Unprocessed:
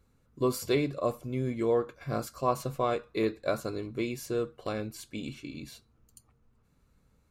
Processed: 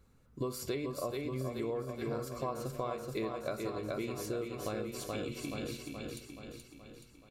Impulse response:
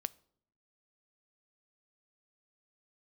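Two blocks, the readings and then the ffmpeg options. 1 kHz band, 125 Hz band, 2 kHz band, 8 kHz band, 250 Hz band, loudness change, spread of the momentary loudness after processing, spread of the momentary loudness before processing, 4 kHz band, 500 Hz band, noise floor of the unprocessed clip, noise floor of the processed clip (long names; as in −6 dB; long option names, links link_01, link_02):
−7.0 dB, −4.5 dB, −5.0 dB, −2.0 dB, −5.5 dB, −6.5 dB, 12 LU, 11 LU, −3.5 dB, −6.5 dB, −68 dBFS, −62 dBFS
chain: -filter_complex "[0:a]aecho=1:1:426|852|1278|1704|2130|2556|2982:0.531|0.287|0.155|0.0836|0.0451|0.0244|0.0132[link_01];[1:a]atrim=start_sample=2205[link_02];[link_01][link_02]afir=irnorm=-1:irlink=0,acompressor=threshold=-37dB:ratio=6,volume=3dB"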